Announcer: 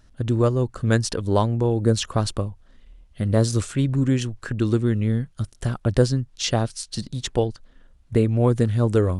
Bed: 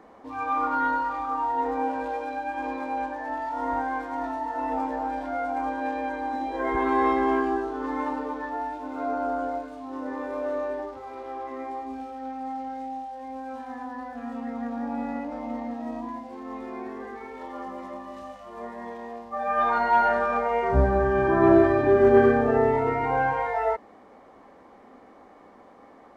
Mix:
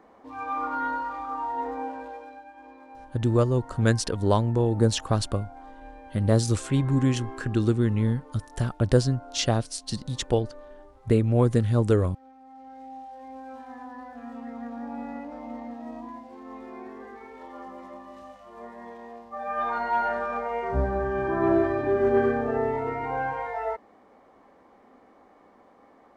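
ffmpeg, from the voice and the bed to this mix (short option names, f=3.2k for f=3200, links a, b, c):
-filter_complex "[0:a]adelay=2950,volume=-2dB[a];[1:a]volume=8dB,afade=t=out:st=1.61:d=0.9:silence=0.223872,afade=t=in:st=12.48:d=0.64:silence=0.251189[b];[a][b]amix=inputs=2:normalize=0"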